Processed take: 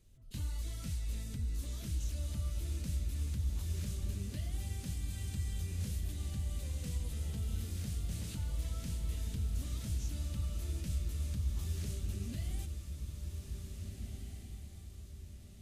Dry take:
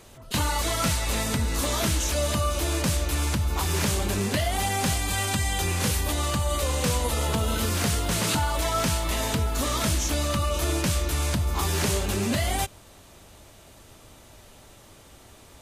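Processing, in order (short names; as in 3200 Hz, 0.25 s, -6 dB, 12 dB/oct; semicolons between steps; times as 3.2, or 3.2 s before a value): passive tone stack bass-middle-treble 10-0-1; on a send: diffused feedback echo 1.82 s, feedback 42%, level -5.5 dB; on the sum: gain -1 dB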